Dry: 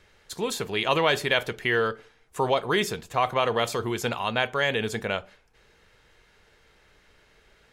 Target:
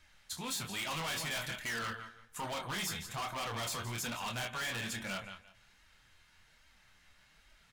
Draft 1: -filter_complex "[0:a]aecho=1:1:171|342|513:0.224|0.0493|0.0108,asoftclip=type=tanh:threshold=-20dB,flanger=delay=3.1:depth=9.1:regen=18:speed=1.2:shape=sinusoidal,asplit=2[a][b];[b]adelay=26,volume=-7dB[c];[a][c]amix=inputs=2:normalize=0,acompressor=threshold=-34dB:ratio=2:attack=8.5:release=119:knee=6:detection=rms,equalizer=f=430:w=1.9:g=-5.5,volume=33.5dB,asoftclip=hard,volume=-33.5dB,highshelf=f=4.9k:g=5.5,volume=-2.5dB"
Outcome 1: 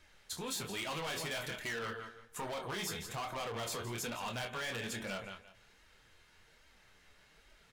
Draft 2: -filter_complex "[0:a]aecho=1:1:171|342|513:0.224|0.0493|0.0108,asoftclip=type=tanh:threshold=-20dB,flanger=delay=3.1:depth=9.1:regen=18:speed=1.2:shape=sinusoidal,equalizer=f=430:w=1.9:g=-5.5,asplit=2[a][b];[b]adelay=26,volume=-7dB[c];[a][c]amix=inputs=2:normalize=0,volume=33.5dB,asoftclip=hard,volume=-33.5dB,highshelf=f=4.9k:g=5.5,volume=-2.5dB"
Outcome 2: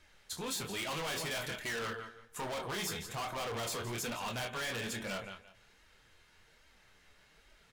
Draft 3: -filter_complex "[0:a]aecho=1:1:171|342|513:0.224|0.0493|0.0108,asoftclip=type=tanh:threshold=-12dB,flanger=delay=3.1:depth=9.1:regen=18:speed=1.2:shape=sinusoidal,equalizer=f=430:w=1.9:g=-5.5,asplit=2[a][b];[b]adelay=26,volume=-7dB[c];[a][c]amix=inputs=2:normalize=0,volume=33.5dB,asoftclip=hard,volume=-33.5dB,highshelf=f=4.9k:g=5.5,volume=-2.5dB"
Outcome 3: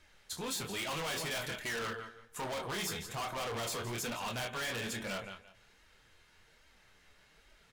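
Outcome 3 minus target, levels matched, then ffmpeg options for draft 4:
500 Hz band +5.0 dB
-filter_complex "[0:a]aecho=1:1:171|342|513:0.224|0.0493|0.0108,asoftclip=type=tanh:threshold=-12dB,flanger=delay=3.1:depth=9.1:regen=18:speed=1.2:shape=sinusoidal,equalizer=f=430:w=1.9:g=-17.5,asplit=2[a][b];[b]adelay=26,volume=-7dB[c];[a][c]amix=inputs=2:normalize=0,volume=33.5dB,asoftclip=hard,volume=-33.5dB,highshelf=f=4.9k:g=5.5,volume=-2.5dB"

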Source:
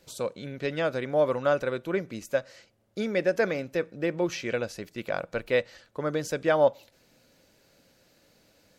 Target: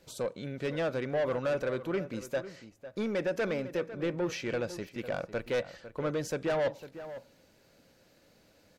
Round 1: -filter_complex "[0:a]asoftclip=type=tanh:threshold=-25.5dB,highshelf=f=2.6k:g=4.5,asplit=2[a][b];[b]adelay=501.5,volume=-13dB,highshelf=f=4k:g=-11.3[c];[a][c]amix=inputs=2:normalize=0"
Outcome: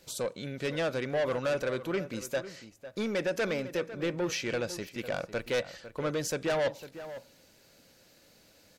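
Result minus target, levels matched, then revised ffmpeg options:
4000 Hz band +4.5 dB
-filter_complex "[0:a]asoftclip=type=tanh:threshold=-25.5dB,highshelf=f=2.6k:g=-4,asplit=2[a][b];[b]adelay=501.5,volume=-13dB,highshelf=f=4k:g=-11.3[c];[a][c]amix=inputs=2:normalize=0"

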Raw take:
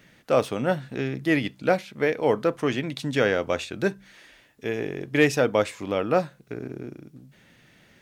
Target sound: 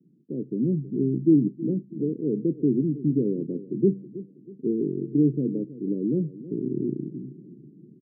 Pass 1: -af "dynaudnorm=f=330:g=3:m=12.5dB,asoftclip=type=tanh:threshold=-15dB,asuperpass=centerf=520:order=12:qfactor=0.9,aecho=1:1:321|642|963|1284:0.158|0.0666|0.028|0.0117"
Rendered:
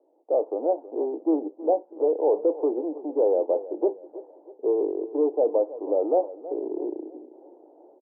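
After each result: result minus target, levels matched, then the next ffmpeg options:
250 Hz band -7.5 dB; soft clip: distortion +8 dB
-af "dynaudnorm=f=330:g=3:m=12.5dB,asoftclip=type=tanh:threshold=-15dB,asuperpass=centerf=230:order=12:qfactor=0.9,aecho=1:1:321|642|963|1284:0.158|0.0666|0.028|0.0117"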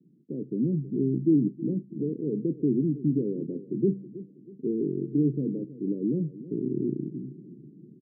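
soft clip: distortion +8 dB
-af "dynaudnorm=f=330:g=3:m=12.5dB,asoftclip=type=tanh:threshold=-7dB,asuperpass=centerf=230:order=12:qfactor=0.9,aecho=1:1:321|642|963|1284:0.158|0.0666|0.028|0.0117"

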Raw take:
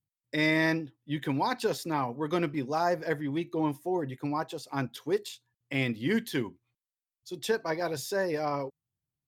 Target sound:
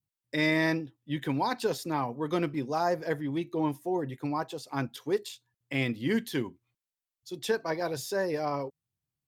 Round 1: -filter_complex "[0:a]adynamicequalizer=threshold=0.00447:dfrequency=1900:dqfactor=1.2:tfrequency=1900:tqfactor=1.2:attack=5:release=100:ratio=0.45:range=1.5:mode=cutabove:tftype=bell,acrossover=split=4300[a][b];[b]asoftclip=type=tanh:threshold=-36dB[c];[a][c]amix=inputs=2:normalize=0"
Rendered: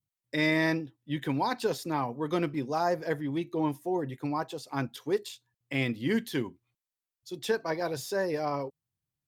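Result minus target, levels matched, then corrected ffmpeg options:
soft clip: distortion +10 dB
-filter_complex "[0:a]adynamicequalizer=threshold=0.00447:dfrequency=1900:dqfactor=1.2:tfrequency=1900:tqfactor=1.2:attack=5:release=100:ratio=0.45:range=1.5:mode=cutabove:tftype=bell,acrossover=split=4300[a][b];[b]asoftclip=type=tanh:threshold=-29dB[c];[a][c]amix=inputs=2:normalize=0"

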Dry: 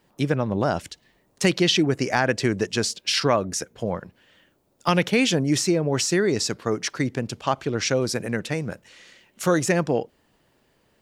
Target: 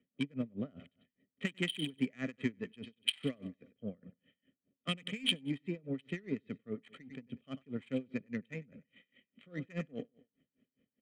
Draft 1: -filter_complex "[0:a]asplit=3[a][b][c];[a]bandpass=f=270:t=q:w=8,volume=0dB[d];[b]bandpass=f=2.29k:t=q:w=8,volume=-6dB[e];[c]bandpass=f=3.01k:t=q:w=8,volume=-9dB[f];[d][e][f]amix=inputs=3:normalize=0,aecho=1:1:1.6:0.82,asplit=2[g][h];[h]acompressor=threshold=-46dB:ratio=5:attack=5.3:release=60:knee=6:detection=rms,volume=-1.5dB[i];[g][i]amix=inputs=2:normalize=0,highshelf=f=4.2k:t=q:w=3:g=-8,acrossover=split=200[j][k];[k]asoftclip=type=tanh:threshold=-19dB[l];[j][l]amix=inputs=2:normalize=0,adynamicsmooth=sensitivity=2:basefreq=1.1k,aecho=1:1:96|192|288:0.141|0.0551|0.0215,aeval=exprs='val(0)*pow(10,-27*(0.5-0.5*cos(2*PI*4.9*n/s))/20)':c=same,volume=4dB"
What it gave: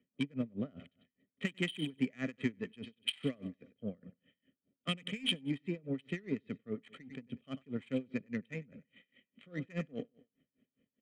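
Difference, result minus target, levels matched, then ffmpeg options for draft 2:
soft clip: distortion +13 dB; compressor: peak gain reduction -5.5 dB
-filter_complex "[0:a]asplit=3[a][b][c];[a]bandpass=f=270:t=q:w=8,volume=0dB[d];[b]bandpass=f=2.29k:t=q:w=8,volume=-6dB[e];[c]bandpass=f=3.01k:t=q:w=8,volume=-9dB[f];[d][e][f]amix=inputs=3:normalize=0,aecho=1:1:1.6:0.82,asplit=2[g][h];[h]acompressor=threshold=-53dB:ratio=5:attack=5.3:release=60:knee=6:detection=rms,volume=-1.5dB[i];[g][i]amix=inputs=2:normalize=0,highshelf=f=4.2k:t=q:w=3:g=-8,acrossover=split=200[j][k];[k]asoftclip=type=tanh:threshold=-8.5dB[l];[j][l]amix=inputs=2:normalize=0,adynamicsmooth=sensitivity=2:basefreq=1.1k,aecho=1:1:96|192|288:0.141|0.0551|0.0215,aeval=exprs='val(0)*pow(10,-27*(0.5-0.5*cos(2*PI*4.9*n/s))/20)':c=same,volume=4dB"

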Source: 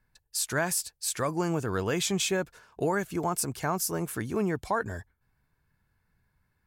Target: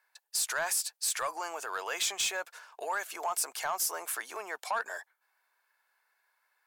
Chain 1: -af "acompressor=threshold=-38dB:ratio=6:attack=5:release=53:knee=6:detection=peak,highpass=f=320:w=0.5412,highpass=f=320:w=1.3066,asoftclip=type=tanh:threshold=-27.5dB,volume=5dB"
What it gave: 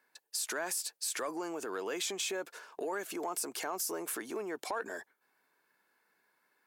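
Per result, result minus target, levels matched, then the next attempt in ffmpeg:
250 Hz band +17.5 dB; compressor: peak gain reduction +7.5 dB
-af "acompressor=threshold=-38dB:ratio=6:attack=5:release=53:knee=6:detection=peak,highpass=f=650:w=0.5412,highpass=f=650:w=1.3066,asoftclip=type=tanh:threshold=-27.5dB,volume=5dB"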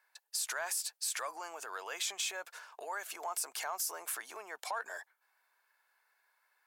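compressor: peak gain reduction +7.5 dB
-af "acompressor=threshold=-29dB:ratio=6:attack=5:release=53:knee=6:detection=peak,highpass=f=650:w=0.5412,highpass=f=650:w=1.3066,asoftclip=type=tanh:threshold=-27.5dB,volume=5dB"

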